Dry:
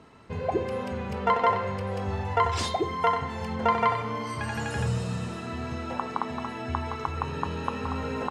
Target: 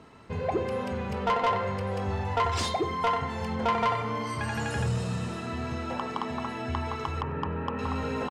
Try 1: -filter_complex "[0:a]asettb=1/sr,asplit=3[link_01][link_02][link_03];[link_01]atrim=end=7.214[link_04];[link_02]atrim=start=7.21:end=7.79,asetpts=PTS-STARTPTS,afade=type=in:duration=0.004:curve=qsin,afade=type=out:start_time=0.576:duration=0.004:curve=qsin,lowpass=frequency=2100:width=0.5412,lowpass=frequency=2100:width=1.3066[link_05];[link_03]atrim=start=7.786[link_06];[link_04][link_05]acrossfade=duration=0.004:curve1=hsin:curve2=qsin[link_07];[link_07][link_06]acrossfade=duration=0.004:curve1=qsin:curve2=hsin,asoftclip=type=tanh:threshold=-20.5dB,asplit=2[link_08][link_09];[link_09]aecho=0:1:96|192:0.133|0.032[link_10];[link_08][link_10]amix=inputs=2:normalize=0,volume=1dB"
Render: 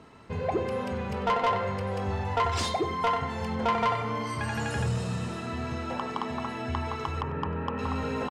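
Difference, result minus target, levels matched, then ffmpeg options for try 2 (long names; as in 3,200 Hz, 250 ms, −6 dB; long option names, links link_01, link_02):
echo-to-direct +7 dB
-filter_complex "[0:a]asettb=1/sr,asplit=3[link_01][link_02][link_03];[link_01]atrim=end=7.214[link_04];[link_02]atrim=start=7.21:end=7.79,asetpts=PTS-STARTPTS,afade=type=in:duration=0.004:curve=qsin,afade=type=out:start_time=0.576:duration=0.004:curve=qsin,lowpass=frequency=2100:width=0.5412,lowpass=frequency=2100:width=1.3066[link_05];[link_03]atrim=start=7.786[link_06];[link_04][link_05]acrossfade=duration=0.004:curve1=hsin:curve2=qsin[link_07];[link_07][link_06]acrossfade=duration=0.004:curve1=qsin:curve2=hsin,asoftclip=type=tanh:threshold=-20.5dB,asplit=2[link_08][link_09];[link_09]aecho=0:1:96|192:0.0596|0.0143[link_10];[link_08][link_10]amix=inputs=2:normalize=0,volume=1dB"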